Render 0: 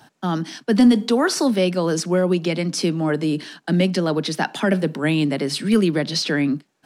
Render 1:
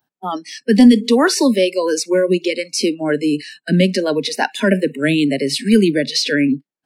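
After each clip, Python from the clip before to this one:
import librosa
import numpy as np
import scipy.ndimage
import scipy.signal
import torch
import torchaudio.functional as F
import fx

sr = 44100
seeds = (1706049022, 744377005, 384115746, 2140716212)

y = fx.noise_reduce_blind(x, sr, reduce_db=29)
y = y * librosa.db_to_amplitude(5.0)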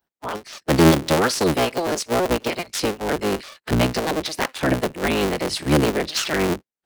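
y = fx.cycle_switch(x, sr, every=3, mode='inverted')
y = y * librosa.db_to_amplitude(-5.5)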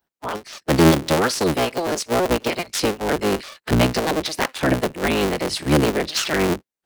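y = fx.rider(x, sr, range_db=3, speed_s=2.0)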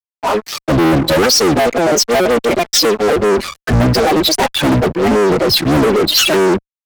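y = fx.spec_expand(x, sr, power=2.7)
y = fx.fuzz(y, sr, gain_db=33.0, gate_db=-38.0)
y = fx.band_widen(y, sr, depth_pct=40)
y = y * librosa.db_to_amplitude(3.0)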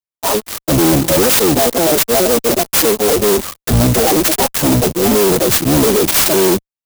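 y = fx.clock_jitter(x, sr, seeds[0], jitter_ms=0.15)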